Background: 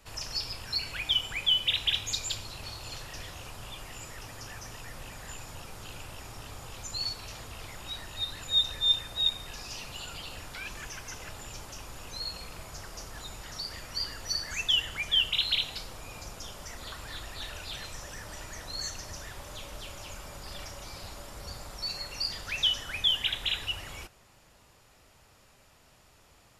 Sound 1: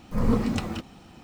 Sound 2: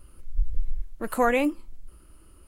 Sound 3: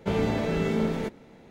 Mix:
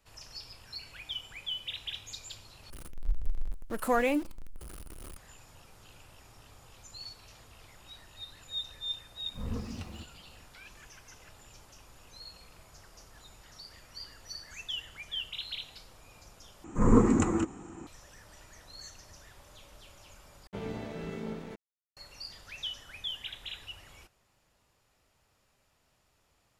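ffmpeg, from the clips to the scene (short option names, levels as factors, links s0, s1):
-filter_complex "[1:a]asplit=2[s0][s1];[0:a]volume=0.266[s2];[2:a]aeval=exprs='val(0)+0.5*0.0188*sgn(val(0))':c=same[s3];[s0]equalizer=f=68:w=1.5:g=13[s4];[s1]firequalizer=gain_entry='entry(230,0);entry(320,11);entry(590,-4);entry(1000,5);entry(2100,-2);entry(3200,-11);entry(4900,-15);entry(7100,13);entry(11000,-19)':delay=0.05:min_phase=1[s5];[3:a]aeval=exprs='sgn(val(0))*max(abs(val(0))-0.01,0)':c=same[s6];[s2]asplit=4[s7][s8][s9][s10];[s7]atrim=end=2.704[s11];[s3]atrim=end=2.47,asetpts=PTS-STARTPTS,volume=0.531[s12];[s8]atrim=start=5.166:end=16.644[s13];[s5]atrim=end=1.23[s14];[s9]atrim=start=17.866:end=20.474[s15];[s6]atrim=end=1.5,asetpts=PTS-STARTPTS,volume=0.266[s16];[s10]atrim=start=21.966[s17];[s4]atrim=end=1.23,asetpts=PTS-STARTPTS,volume=0.15,afade=t=in:d=0.004:c=hsin,afade=t=out:st=1.226:d=0.004:c=hsin,adelay=9230[s18];[s11][s12]acrossfade=d=0.004:c1=hsin:c2=hsin[s19];[s19][s13]acrossfade=d=0.004:c1=hsin:c2=hsin[s20];[s20][s14]acrossfade=d=0.004:c1=hsin:c2=hsin[s21];[s21][s15]acrossfade=d=0.004:c1=hsin:c2=hsin[s22];[s22][s16]acrossfade=d=0.004:c1=hsin:c2=hsin[s23];[s23][s17]acrossfade=d=0.004:c1=hsin:c2=hsin[s24];[s24][s18]amix=inputs=2:normalize=0"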